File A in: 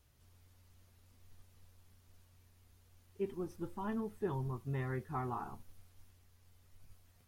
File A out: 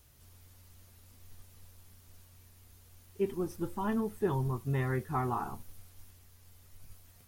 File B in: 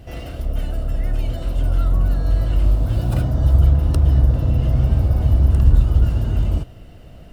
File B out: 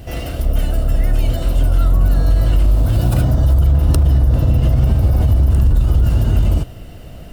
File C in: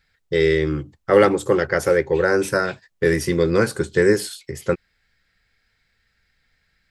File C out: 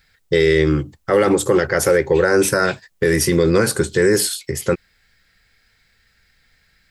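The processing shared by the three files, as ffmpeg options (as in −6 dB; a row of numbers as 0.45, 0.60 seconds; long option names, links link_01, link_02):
-af "highshelf=frequency=6900:gain=8,alimiter=limit=-12.5dB:level=0:latency=1:release=45,volume=6.5dB"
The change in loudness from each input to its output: +6.5, +3.0, +2.5 LU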